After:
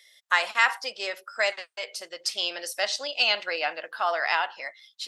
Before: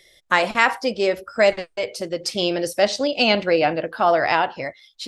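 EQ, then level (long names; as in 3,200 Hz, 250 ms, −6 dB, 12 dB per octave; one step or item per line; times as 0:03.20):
high-pass filter 1,100 Hz 12 dB per octave
notch filter 2,300 Hz, Q 19
−2.0 dB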